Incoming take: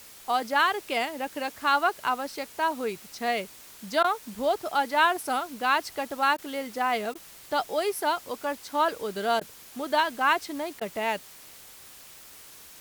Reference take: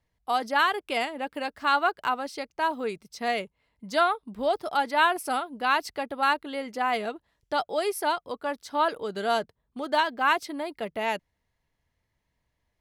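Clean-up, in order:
repair the gap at 0:04.03/0:06.37/0:07.14/0:09.40/0:10.80, 11 ms
broadband denoise 29 dB, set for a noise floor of −48 dBFS

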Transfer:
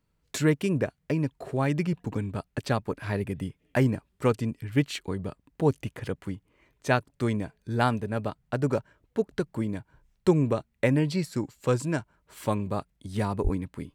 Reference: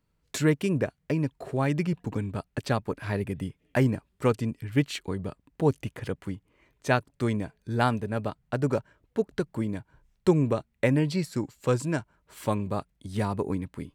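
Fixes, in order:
high-pass at the plosives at 0:13.43

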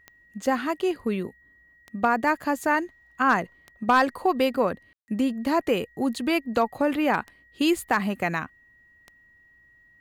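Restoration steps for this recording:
clipped peaks rebuilt −11.5 dBFS
click removal
notch filter 1,900 Hz, Q 30
ambience match 0:04.93–0:05.08

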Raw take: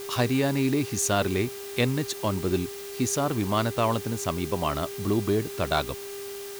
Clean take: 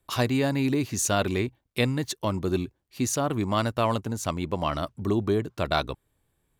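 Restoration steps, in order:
clipped peaks rebuilt −12.5 dBFS
hum removal 398.4 Hz, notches 17
notch filter 400 Hz, Q 30
noise reduction from a noise print 30 dB

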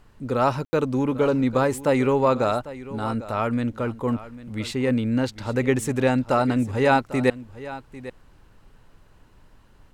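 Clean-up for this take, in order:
ambience match 0:00.65–0:00.73
downward expander −44 dBFS, range −21 dB
echo removal 798 ms −16 dB

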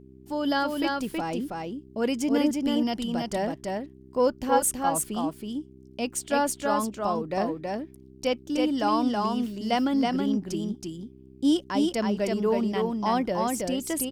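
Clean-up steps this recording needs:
hum removal 65.3 Hz, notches 6
echo removal 323 ms −3 dB

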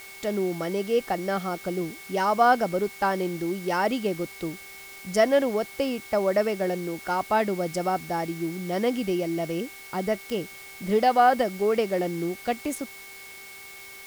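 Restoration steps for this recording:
click removal
hum removal 391.3 Hz, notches 14
notch filter 2,200 Hz, Q 30
noise reduction from a noise print 27 dB

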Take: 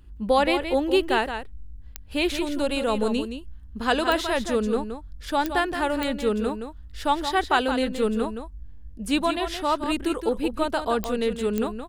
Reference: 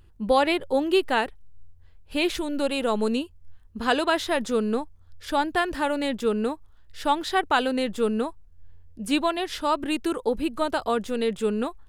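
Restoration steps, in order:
click removal
hum removal 90.8 Hz, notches 3
noise reduction from a noise print 8 dB
echo removal 170 ms −8.5 dB

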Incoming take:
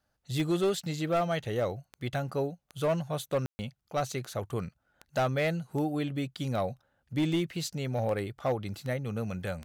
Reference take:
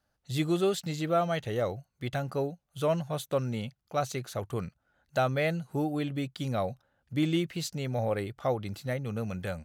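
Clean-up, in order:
clipped peaks rebuilt −22 dBFS
click removal
ambience match 0:03.46–0:03.59

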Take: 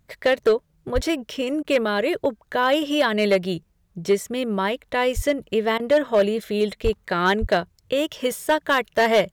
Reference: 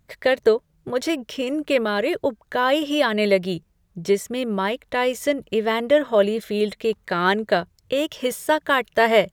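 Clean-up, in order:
clipped peaks rebuilt −11.5 dBFS
high-pass at the plosives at 0:00.94/0:05.15/0:06.83/0:07.40
repair the gap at 0:01.63/0:05.78, 15 ms

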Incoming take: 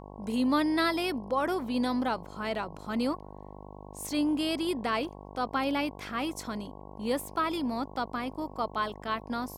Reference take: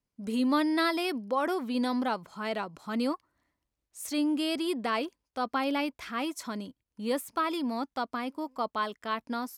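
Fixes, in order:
hum removal 49.9 Hz, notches 22

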